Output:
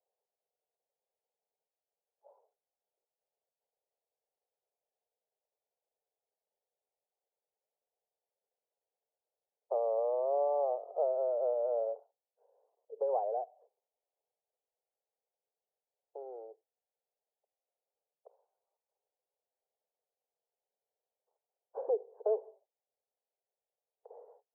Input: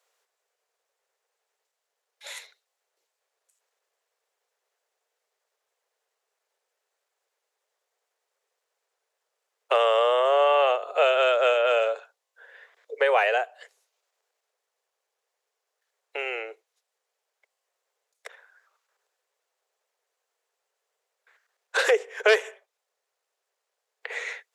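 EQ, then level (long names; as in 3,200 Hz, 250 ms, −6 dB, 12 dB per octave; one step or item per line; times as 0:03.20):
high-pass filter 360 Hz
Butterworth low-pass 860 Hz 48 dB per octave
high-frequency loss of the air 440 metres
−7.5 dB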